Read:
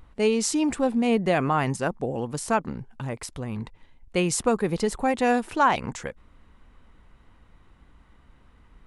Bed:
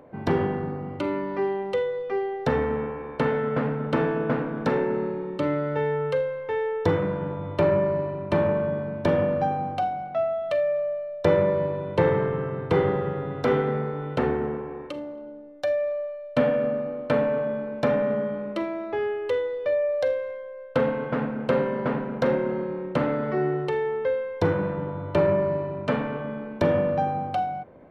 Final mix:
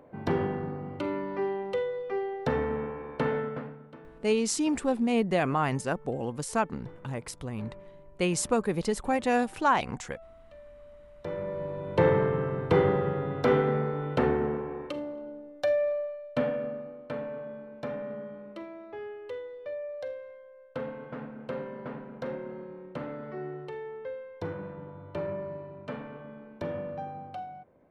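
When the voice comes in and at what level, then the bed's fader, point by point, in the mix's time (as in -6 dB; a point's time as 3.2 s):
4.05 s, -3.5 dB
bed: 3.39 s -4.5 dB
4 s -27 dB
10.74 s -27 dB
12.05 s -1 dB
15.9 s -1 dB
17.01 s -13 dB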